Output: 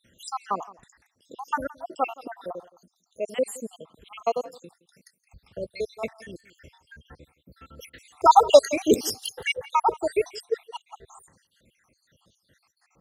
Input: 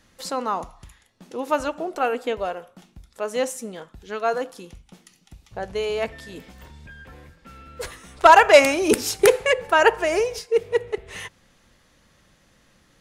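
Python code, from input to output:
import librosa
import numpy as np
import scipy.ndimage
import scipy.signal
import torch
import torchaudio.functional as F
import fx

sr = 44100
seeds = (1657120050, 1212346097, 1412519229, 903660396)

y = fx.spec_dropout(x, sr, seeds[0], share_pct=77)
y = scipy.signal.sosfilt(scipy.signal.butter(2, 61.0, 'highpass', fs=sr, output='sos'), y)
y = y + 10.0 ** (-20.5 / 20.0) * np.pad(y, (int(169 * sr / 1000.0), 0))[:len(y)]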